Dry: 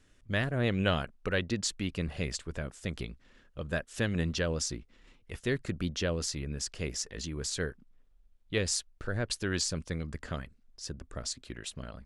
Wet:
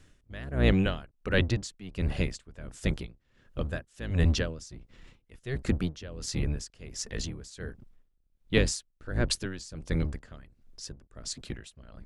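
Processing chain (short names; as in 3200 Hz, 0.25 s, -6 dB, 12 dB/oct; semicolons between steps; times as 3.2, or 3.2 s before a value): octaver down 1 oct, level +2 dB; dB-linear tremolo 1.4 Hz, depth 19 dB; gain +5.5 dB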